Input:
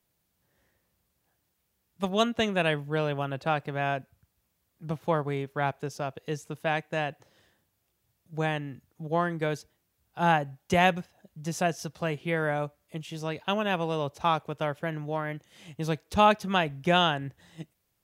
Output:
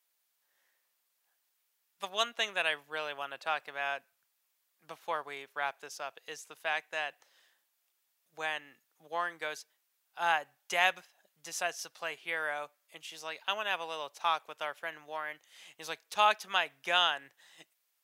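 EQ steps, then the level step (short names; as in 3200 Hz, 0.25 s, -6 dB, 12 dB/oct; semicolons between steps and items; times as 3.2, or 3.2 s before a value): Bessel high-pass 1200 Hz, order 2; 0.0 dB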